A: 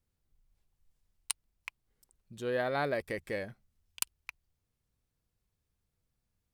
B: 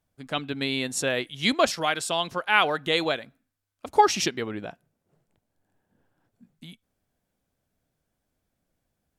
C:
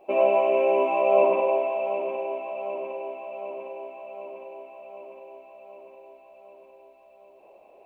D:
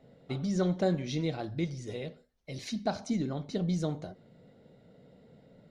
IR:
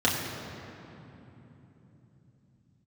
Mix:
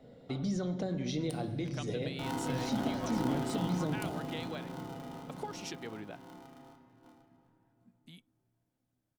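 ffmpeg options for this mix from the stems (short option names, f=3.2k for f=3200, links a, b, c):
-filter_complex "[0:a]volume=-14.5dB,asplit=2[a][b];[b]volume=-14.5dB[c];[1:a]acompressor=threshold=-29dB:ratio=6,adelay=1450,volume=-9.5dB[d];[2:a]aeval=exprs='if(lt(val(0),0),0.447*val(0),val(0))':c=same,agate=range=-33dB:threshold=-42dB:ratio=16:detection=peak,aeval=exprs='val(0)*sgn(sin(2*PI*280*n/s))':c=same,adelay=2100,volume=-16.5dB,asplit=2[e][f];[f]volume=-15dB[g];[3:a]alimiter=level_in=4.5dB:limit=-24dB:level=0:latency=1:release=181,volume=-4.5dB,volume=2dB,asplit=2[h][i];[i]volume=-24dB[j];[4:a]atrim=start_sample=2205[k];[c][g][j]amix=inputs=3:normalize=0[l];[l][k]afir=irnorm=-1:irlink=0[m];[a][d][e][h][m]amix=inputs=5:normalize=0,acrossover=split=380[n][o];[o]acompressor=threshold=-36dB:ratio=6[p];[n][p]amix=inputs=2:normalize=0"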